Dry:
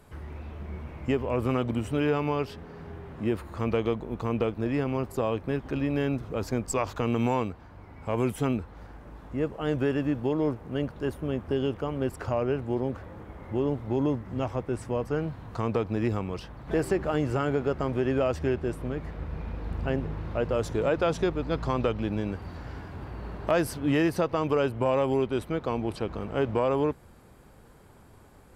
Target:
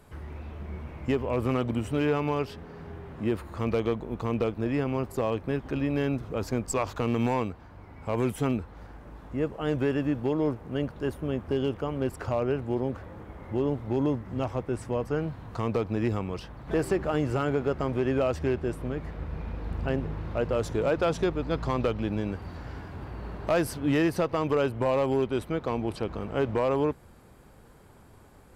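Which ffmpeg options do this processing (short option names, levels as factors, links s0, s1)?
-af "asoftclip=type=hard:threshold=0.133"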